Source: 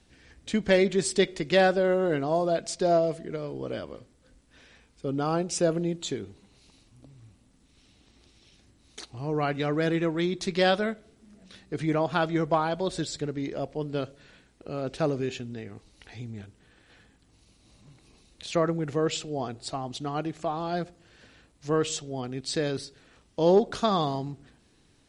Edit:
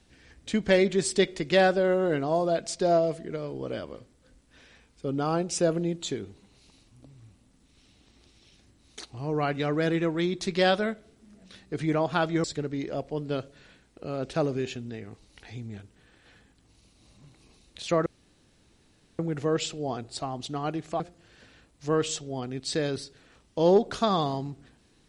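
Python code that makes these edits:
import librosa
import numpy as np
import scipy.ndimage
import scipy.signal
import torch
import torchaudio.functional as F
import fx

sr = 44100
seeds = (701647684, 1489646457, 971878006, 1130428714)

y = fx.edit(x, sr, fx.cut(start_s=12.44, length_s=0.64),
    fx.insert_room_tone(at_s=18.7, length_s=1.13),
    fx.cut(start_s=20.51, length_s=0.3), tone=tone)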